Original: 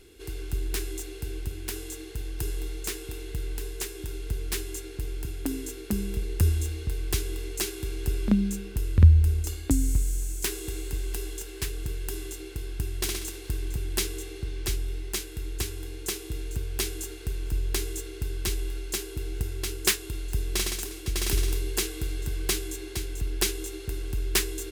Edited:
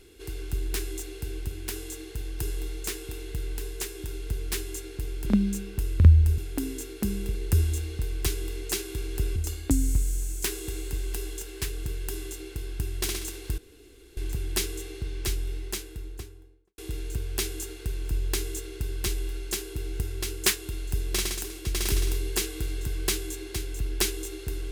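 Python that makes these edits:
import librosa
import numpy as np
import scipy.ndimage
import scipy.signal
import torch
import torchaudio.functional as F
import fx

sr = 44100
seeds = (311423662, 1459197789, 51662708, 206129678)

y = fx.studio_fade_out(x, sr, start_s=14.93, length_s=1.26)
y = fx.edit(y, sr, fx.move(start_s=8.24, length_s=1.12, to_s=5.26),
    fx.insert_room_tone(at_s=13.58, length_s=0.59), tone=tone)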